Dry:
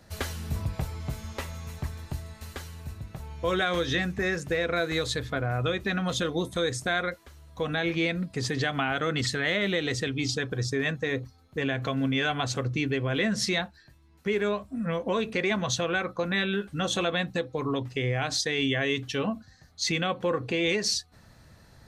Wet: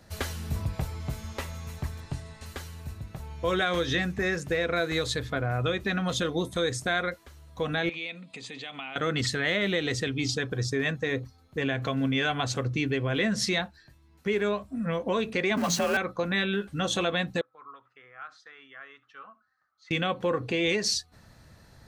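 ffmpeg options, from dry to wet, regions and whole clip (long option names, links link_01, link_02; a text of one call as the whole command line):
ffmpeg -i in.wav -filter_complex "[0:a]asettb=1/sr,asplit=3[link_01][link_02][link_03];[link_01]atrim=end=2.004[link_04];[link_02]atrim=start=2:end=2.46,asetpts=PTS-STARTPTS,afade=type=in:duration=0.004:curve=qsin,afade=type=out:start_time=0.456:duration=0.004:curve=qsin,lowpass=frequency=9700:width=0.5412,lowpass=frequency=9700:width=1.3066,aecho=1:1:7.2:0.42,atrim=end_sample=20286[link_05];[link_03]atrim=start=2.456[link_06];[link_04][link_05]acrossfade=duration=0.004:curve1=hsin:curve2=qsin[link_07];[link_07][link_06]acrossfade=duration=0.004:curve1=qsin:curve2=hsin,asettb=1/sr,asplit=3[link_08][link_09][link_10];[link_08]atrim=end=7.894[link_11];[link_09]atrim=start=7.89:end=8.96,asetpts=PTS-STARTPTS,afade=type=in:duration=0.004:curve=qsin,afade=type=out:start_time=1.066:duration=0.004:curve=qsin,acompressor=threshold=-35dB:ratio=4:attack=3.2:release=140:knee=1:detection=peak,highpass=270,equalizer=frequency=370:width_type=q:width=4:gain=-9,equalizer=frequency=610:width_type=q:width=4:gain=-3,equalizer=frequency=1600:width_type=q:width=4:gain=-8,equalizer=frequency=2500:width_type=q:width=4:gain=9,equalizer=frequency=3600:width_type=q:width=4:gain=7,equalizer=frequency=5400:width_type=q:width=4:gain=-9,lowpass=frequency=9300:width=0.5412,lowpass=frequency=9300:width=1.3066[link_12];[link_10]atrim=start=8.956[link_13];[link_11][link_12]acrossfade=duration=0.004:curve1=hsin:curve2=qsin[link_14];[link_14][link_13]acrossfade=duration=0.004:curve1=qsin:curve2=hsin,asettb=1/sr,asplit=3[link_15][link_16][link_17];[link_15]atrim=end=15.574[link_18];[link_16]atrim=start=15.57:end=15.97,asetpts=PTS-STARTPTS,afade=type=in:duration=0.004:curve=qsin,afade=type=out:start_time=0.396:duration=0.004:curve=qsin,aeval=exprs='val(0)+0.5*0.0299*sgn(val(0))':channel_layout=same,bandreject=frequency=3500:width=5.6,afreqshift=49[link_19];[link_17]atrim=start=15.966[link_20];[link_18][link_19]acrossfade=duration=0.004:curve1=hsin:curve2=qsin[link_21];[link_21][link_20]acrossfade=duration=0.004:curve1=qsin:curve2=hsin,asettb=1/sr,asplit=3[link_22][link_23][link_24];[link_22]atrim=end=17.414[link_25];[link_23]atrim=start=17.41:end=19.91,asetpts=PTS-STARTPTS,afade=type=in:duration=0.004:curve=qsin,afade=type=out:start_time=2.496:duration=0.004:curve=qsin,bandpass=frequency=1300:width_type=q:width=9.1,aecho=1:1:71:0.0841,atrim=end_sample=110250[link_26];[link_24]atrim=start=19.906[link_27];[link_25][link_26]acrossfade=duration=0.004:curve1=hsin:curve2=qsin[link_28];[link_28][link_27]acrossfade=duration=0.004:curve1=qsin:curve2=hsin" out.wav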